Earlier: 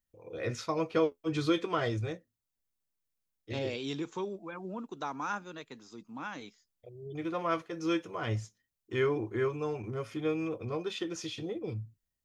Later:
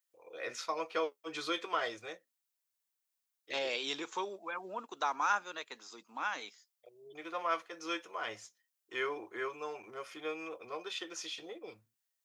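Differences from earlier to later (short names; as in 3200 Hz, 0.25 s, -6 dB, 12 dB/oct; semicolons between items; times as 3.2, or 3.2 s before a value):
second voice +5.5 dB; master: add HPF 680 Hz 12 dB/oct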